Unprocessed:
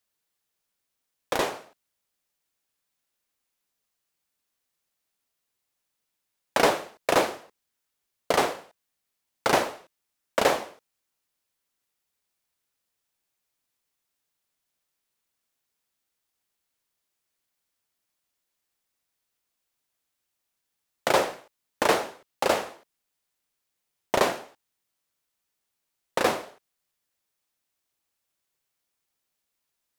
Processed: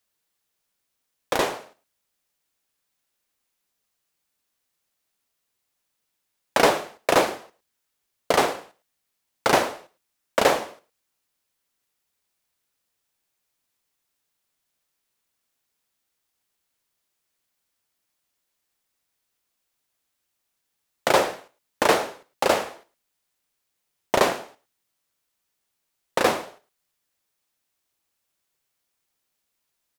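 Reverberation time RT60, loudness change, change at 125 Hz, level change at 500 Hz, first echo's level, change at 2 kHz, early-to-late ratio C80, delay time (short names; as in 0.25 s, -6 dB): none, +3.0 dB, +3.0 dB, +3.0 dB, -19.5 dB, +3.0 dB, none, 0.108 s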